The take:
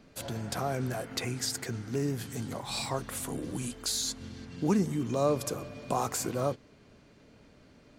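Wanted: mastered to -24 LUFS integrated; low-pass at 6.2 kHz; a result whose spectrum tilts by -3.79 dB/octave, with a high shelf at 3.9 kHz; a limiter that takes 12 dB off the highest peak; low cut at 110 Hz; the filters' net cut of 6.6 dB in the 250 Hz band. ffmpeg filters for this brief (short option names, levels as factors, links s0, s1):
-af "highpass=110,lowpass=6200,equalizer=f=250:t=o:g=-8.5,highshelf=f=3900:g=4,volume=5.31,alimiter=limit=0.211:level=0:latency=1"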